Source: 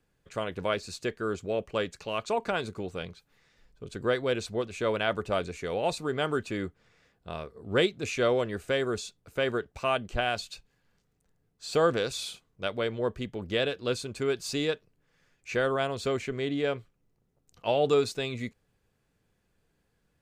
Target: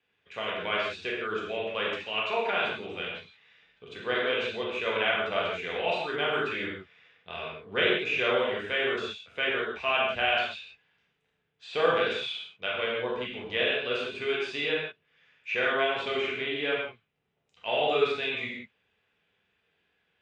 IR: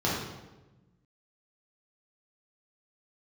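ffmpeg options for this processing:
-filter_complex "[0:a]bandpass=frequency=3100:width_type=q:width=1.4:csg=0,acrossover=split=2800[link_01][link_02];[link_02]acompressor=threshold=-45dB:ratio=4:attack=1:release=60[link_03];[link_01][link_03]amix=inputs=2:normalize=0,aemphasis=mode=reproduction:type=50fm[link_04];[1:a]atrim=start_sample=2205,atrim=end_sample=4410,asetrate=23814,aresample=44100[link_05];[link_04][link_05]afir=irnorm=-1:irlink=0"

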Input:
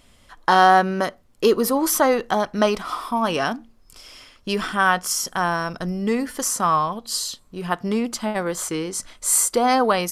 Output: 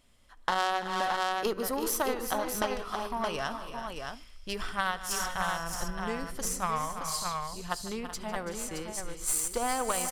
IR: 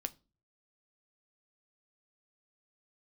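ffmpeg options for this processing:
-filter_complex "[0:a]highshelf=frequency=7700:gain=2,asplit=2[link_01][link_02];[link_02]aecho=0:1:73:0.0631[link_03];[link_01][link_03]amix=inputs=2:normalize=0,asubboost=boost=11.5:cutoff=65,aeval=exprs='0.841*(cos(1*acos(clip(val(0)/0.841,-1,1)))-cos(1*PI/2))+0.237*(cos(3*acos(clip(val(0)/0.841,-1,1)))-cos(3*PI/2))+0.0266*(cos(4*acos(clip(val(0)/0.841,-1,1)))-cos(4*PI/2))+0.0473*(cos(5*acos(clip(val(0)/0.841,-1,1)))-cos(5*PI/2))+0.0211*(cos(7*acos(clip(val(0)/0.841,-1,1)))-cos(7*PI/2))':channel_layout=same,asplit=2[link_04][link_05];[link_05]aecho=0:1:150|333|377|401|620:0.133|0.224|0.188|0.112|0.501[link_06];[link_04][link_06]amix=inputs=2:normalize=0,acompressor=threshold=-25dB:ratio=4"

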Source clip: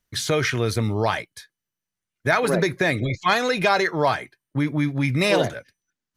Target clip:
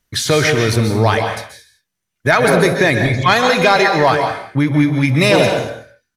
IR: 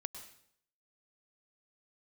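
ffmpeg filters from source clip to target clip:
-filter_complex "[0:a]aecho=1:1:65|125|139|165:0.106|0.1|0.188|0.133[link_01];[1:a]atrim=start_sample=2205,afade=type=out:start_time=0.24:duration=0.01,atrim=end_sample=11025,asetrate=34398,aresample=44100[link_02];[link_01][link_02]afir=irnorm=-1:irlink=0,acontrast=77,volume=2.5dB"

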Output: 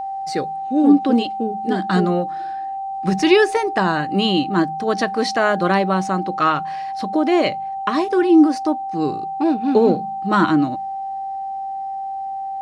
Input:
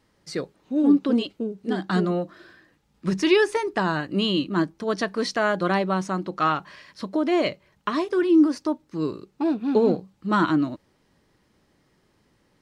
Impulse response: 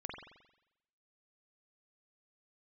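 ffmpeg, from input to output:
-af "aeval=exprs='val(0)+0.0355*sin(2*PI*780*n/s)':channel_layout=same,bandreject=frequency=3300:width=28,bandreject=frequency=53.11:width_type=h:width=4,bandreject=frequency=106.22:width_type=h:width=4,bandreject=frequency=159.33:width_type=h:width=4,bandreject=frequency=212.44:width_type=h:width=4,volume=5dB"

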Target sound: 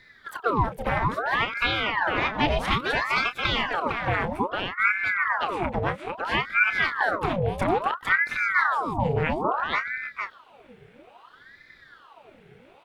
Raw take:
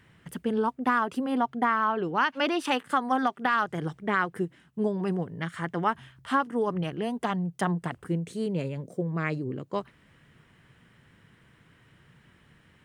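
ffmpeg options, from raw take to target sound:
ffmpeg -i in.wav -filter_complex "[0:a]equalizer=frequency=125:width_type=o:width=1:gain=11,equalizer=frequency=250:width_type=o:width=1:gain=-4,equalizer=frequency=500:width_type=o:width=1:gain=11,equalizer=frequency=1000:width_type=o:width=1:gain=-11,equalizer=frequency=2000:width_type=o:width=1:gain=7,equalizer=frequency=8000:width_type=o:width=1:gain=-4,asplit=2[link_01][link_02];[link_02]asetrate=55563,aresample=44100,atempo=0.793701,volume=-13dB[link_03];[link_01][link_03]amix=inputs=2:normalize=0,asplit=2[link_04][link_05];[link_05]adelay=29,volume=-11dB[link_06];[link_04][link_06]amix=inputs=2:normalize=0,asplit=2[link_07][link_08];[link_08]aecho=0:1:455:0.596[link_09];[link_07][link_09]amix=inputs=2:normalize=0,aeval=exprs='val(0)*sin(2*PI*1100*n/s+1100*0.75/0.6*sin(2*PI*0.6*n/s))':channel_layout=same,volume=1.5dB" out.wav

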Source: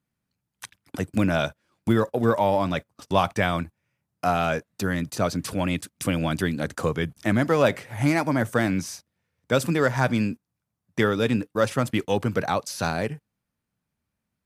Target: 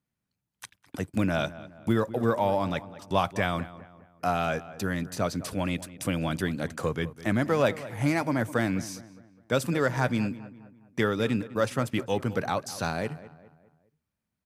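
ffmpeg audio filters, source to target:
ffmpeg -i in.wav -filter_complex "[0:a]asplit=2[link_01][link_02];[link_02]adelay=205,lowpass=frequency=2300:poles=1,volume=-16dB,asplit=2[link_03][link_04];[link_04]adelay=205,lowpass=frequency=2300:poles=1,volume=0.45,asplit=2[link_05][link_06];[link_06]adelay=205,lowpass=frequency=2300:poles=1,volume=0.45,asplit=2[link_07][link_08];[link_08]adelay=205,lowpass=frequency=2300:poles=1,volume=0.45[link_09];[link_01][link_03][link_05][link_07][link_09]amix=inputs=5:normalize=0,volume=-4dB" out.wav

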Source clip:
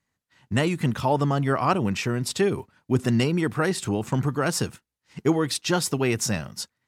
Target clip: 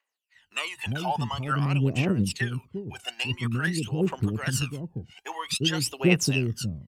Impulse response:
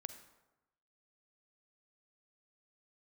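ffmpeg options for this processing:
-filter_complex "[0:a]asettb=1/sr,asplit=3[link_01][link_02][link_03];[link_01]atrim=end=1.644[link_04];[link_02]atrim=start=1.64:end=4.27,asetpts=PTS-STARTPTS,afade=type=in:duration=0.004:curve=qsin,afade=type=out:start_time=2.626:duration=0.004:curve=qsin,tremolo=f=8.9:d=0.49[link_05];[link_03]atrim=start=4.266[link_06];[link_04][link_05]acrossfade=duration=0.004:curve1=hsin:curve2=qsin[link_07];[link_07][link_06]acrossfade=duration=0.004:curve1=qsin:curve2=hsin,acrossover=split=510[link_08][link_09];[link_08]adelay=350[link_10];[link_10][link_09]amix=inputs=2:normalize=0,aphaser=in_gain=1:out_gain=1:delay=1.4:decay=0.77:speed=0.49:type=triangular,equalizer=frequency=2800:width=3.6:gain=12,volume=-6.5dB"

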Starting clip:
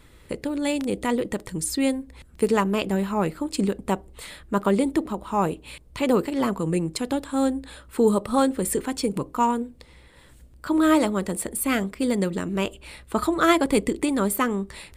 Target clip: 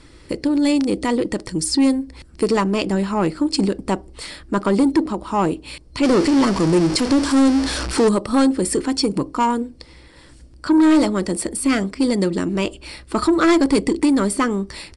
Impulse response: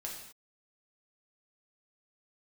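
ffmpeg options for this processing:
-filter_complex "[0:a]asettb=1/sr,asplit=3[link_01][link_02][link_03];[link_01]atrim=end=6.034[link_04];[link_02]atrim=start=6.03:end=8.09,asetpts=PTS-STARTPTS,afade=type=in:duration=0.004:curve=qsin,afade=type=out:start_time=2.056:duration=0.004:curve=qsin,aeval=exprs='val(0)+0.5*0.0531*sgn(val(0))':channel_layout=same[link_05];[link_03]atrim=start=8.086[link_06];[link_04][link_05]acrossfade=duration=0.004:curve1=hsin:curve2=qsin[link_07];[link_07][link_06]acrossfade=duration=0.004:curve1=qsin:curve2=hsin,superequalizer=6b=2:14b=2.51,asoftclip=type=tanh:threshold=-14.5dB,aresample=22050,aresample=44100,volume=5dB"

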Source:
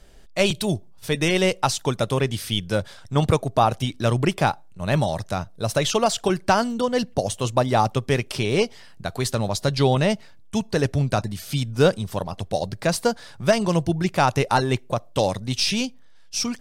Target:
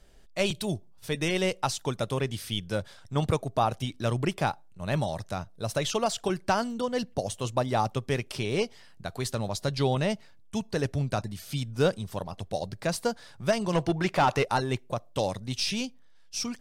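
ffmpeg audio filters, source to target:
ffmpeg -i in.wav -filter_complex "[0:a]asplit=3[link_01][link_02][link_03];[link_01]afade=type=out:start_time=13.72:duration=0.02[link_04];[link_02]asplit=2[link_05][link_06];[link_06]highpass=frequency=720:poles=1,volume=19dB,asoftclip=type=tanh:threshold=-6.5dB[link_07];[link_05][link_07]amix=inputs=2:normalize=0,lowpass=frequency=2300:poles=1,volume=-6dB,afade=type=in:start_time=13.72:duration=0.02,afade=type=out:start_time=14.43:duration=0.02[link_08];[link_03]afade=type=in:start_time=14.43:duration=0.02[link_09];[link_04][link_08][link_09]amix=inputs=3:normalize=0,volume=-7dB" out.wav

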